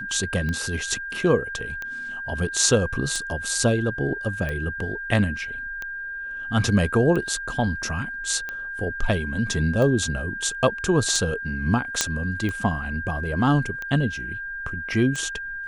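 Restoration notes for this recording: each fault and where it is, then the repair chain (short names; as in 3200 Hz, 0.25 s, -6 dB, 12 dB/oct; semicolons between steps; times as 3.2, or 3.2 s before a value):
tick 45 rpm -17 dBFS
tone 1600 Hz -30 dBFS
12.01 pop -3 dBFS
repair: de-click; notch 1600 Hz, Q 30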